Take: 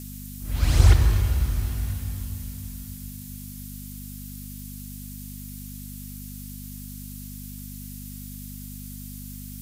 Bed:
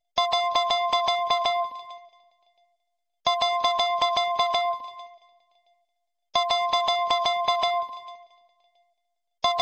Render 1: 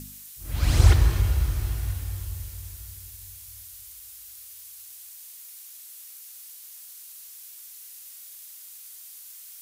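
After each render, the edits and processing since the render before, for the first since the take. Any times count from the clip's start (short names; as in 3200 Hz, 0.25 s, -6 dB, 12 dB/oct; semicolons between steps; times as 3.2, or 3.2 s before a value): de-hum 50 Hz, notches 6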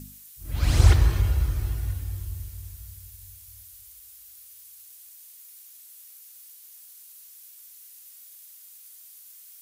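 denoiser 6 dB, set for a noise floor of -45 dBFS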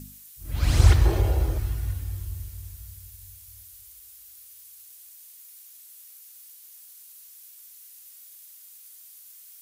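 1.05–1.58 band shelf 520 Hz +12 dB; 3.57–5.13 bell 370 Hz +10.5 dB 0.28 oct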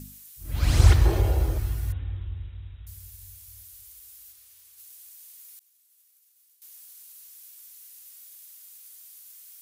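1.92–2.87 brick-wall FIR low-pass 3900 Hz; 4.31–4.77 high shelf 7700 Hz -> 4500 Hz -6.5 dB; 5.59–6.62 expander -39 dBFS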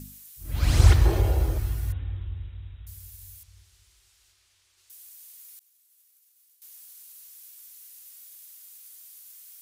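3.43–4.9 air absorption 100 m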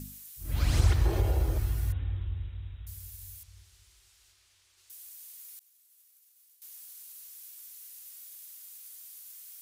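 compressor 2:1, threshold -25 dBFS, peak gain reduction 9 dB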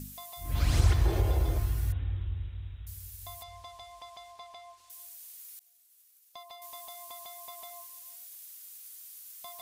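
add bed -25 dB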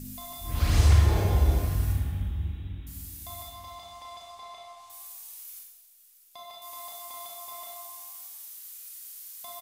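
frequency-shifting echo 0.294 s, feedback 36%, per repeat +92 Hz, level -19 dB; Schroeder reverb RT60 0.87 s, combs from 28 ms, DRR -2 dB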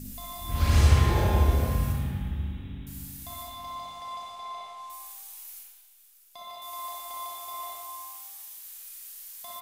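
spring tank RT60 1.1 s, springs 58 ms, chirp 55 ms, DRR 0 dB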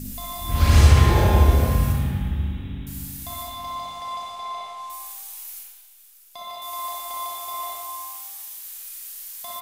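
gain +6.5 dB; limiter -3 dBFS, peak gain reduction 2 dB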